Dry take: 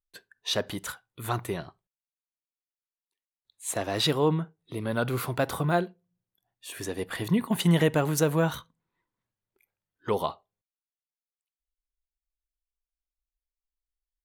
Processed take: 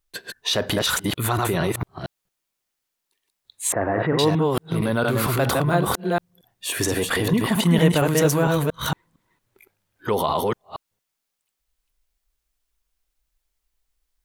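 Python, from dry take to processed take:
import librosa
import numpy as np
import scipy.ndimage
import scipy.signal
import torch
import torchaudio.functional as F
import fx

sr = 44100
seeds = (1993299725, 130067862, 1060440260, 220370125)

p1 = fx.reverse_delay(x, sr, ms=229, wet_db=-2.0)
p2 = fx.ellip_lowpass(p1, sr, hz=1900.0, order=4, stop_db=80, at=(3.72, 4.19))
p3 = fx.over_compress(p2, sr, threshold_db=-35.0, ratio=-1.0)
p4 = p2 + (p3 * librosa.db_to_amplitude(1.0))
y = p4 * librosa.db_to_amplitude(2.5)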